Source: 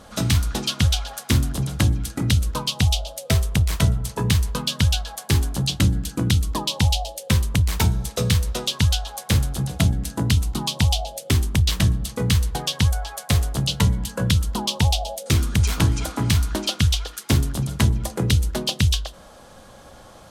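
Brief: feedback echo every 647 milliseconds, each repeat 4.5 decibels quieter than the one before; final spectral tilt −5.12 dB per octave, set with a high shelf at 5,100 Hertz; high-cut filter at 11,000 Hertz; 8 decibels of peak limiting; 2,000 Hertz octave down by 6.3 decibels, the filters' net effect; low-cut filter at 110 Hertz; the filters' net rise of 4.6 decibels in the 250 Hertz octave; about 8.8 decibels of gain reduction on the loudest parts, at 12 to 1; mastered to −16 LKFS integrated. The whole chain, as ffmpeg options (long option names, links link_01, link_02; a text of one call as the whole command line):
ffmpeg -i in.wav -af "highpass=110,lowpass=11000,equalizer=frequency=250:width_type=o:gain=7,equalizer=frequency=2000:width_type=o:gain=-7.5,highshelf=frequency=5100:gain=-4,acompressor=threshold=-23dB:ratio=12,alimiter=limit=-19.5dB:level=0:latency=1,aecho=1:1:647|1294|1941|2588|3235|3882|4529|5176|5823:0.596|0.357|0.214|0.129|0.0772|0.0463|0.0278|0.0167|0.01,volume=13.5dB" out.wav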